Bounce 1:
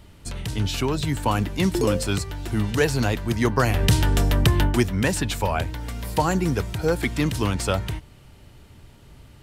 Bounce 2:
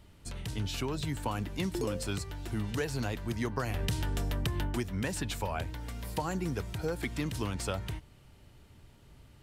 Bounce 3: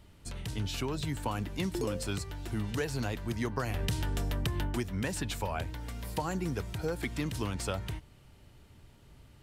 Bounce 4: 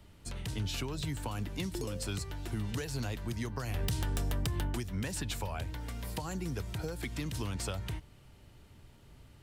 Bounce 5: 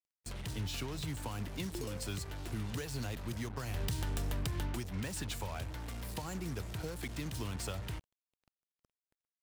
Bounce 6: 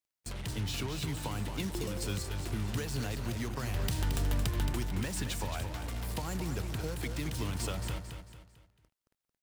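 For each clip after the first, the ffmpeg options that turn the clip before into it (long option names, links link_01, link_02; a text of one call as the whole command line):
ffmpeg -i in.wav -af "acompressor=threshold=-20dB:ratio=6,volume=-8.5dB" out.wav
ffmpeg -i in.wav -af anull out.wav
ffmpeg -i in.wav -filter_complex "[0:a]acrossover=split=140|3000[link_01][link_02][link_03];[link_02]acompressor=threshold=-37dB:ratio=6[link_04];[link_01][link_04][link_03]amix=inputs=3:normalize=0,aeval=exprs='(mod(13.3*val(0)+1,2)-1)/13.3':channel_layout=same" out.wav
ffmpeg -i in.wav -af "acrusher=bits=6:mix=0:aa=0.5,volume=-3dB" out.wav
ffmpeg -i in.wav -af "aecho=1:1:223|446|669|892:0.422|0.164|0.0641|0.025,volume=3dB" out.wav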